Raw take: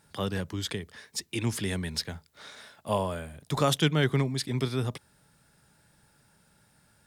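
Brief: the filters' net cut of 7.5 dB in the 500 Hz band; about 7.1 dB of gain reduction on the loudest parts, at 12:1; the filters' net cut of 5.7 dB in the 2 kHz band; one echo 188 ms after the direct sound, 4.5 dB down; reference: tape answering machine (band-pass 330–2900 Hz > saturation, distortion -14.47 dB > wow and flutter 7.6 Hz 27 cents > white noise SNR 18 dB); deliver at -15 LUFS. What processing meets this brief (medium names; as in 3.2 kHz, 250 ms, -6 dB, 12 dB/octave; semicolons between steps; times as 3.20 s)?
peaking EQ 500 Hz -8 dB; peaking EQ 2 kHz -6 dB; compression 12:1, threshold -29 dBFS; band-pass 330–2900 Hz; delay 188 ms -4.5 dB; saturation -33 dBFS; wow and flutter 7.6 Hz 27 cents; white noise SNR 18 dB; trim +28.5 dB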